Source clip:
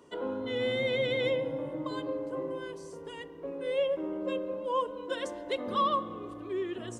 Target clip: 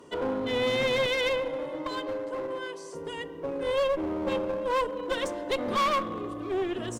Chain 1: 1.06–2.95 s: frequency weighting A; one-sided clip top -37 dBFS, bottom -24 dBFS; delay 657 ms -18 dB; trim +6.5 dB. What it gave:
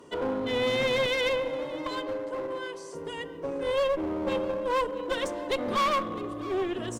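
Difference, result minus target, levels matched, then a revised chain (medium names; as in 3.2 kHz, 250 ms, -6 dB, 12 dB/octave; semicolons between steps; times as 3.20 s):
echo-to-direct +10.5 dB
1.06–2.95 s: frequency weighting A; one-sided clip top -37 dBFS, bottom -24 dBFS; delay 657 ms -28.5 dB; trim +6.5 dB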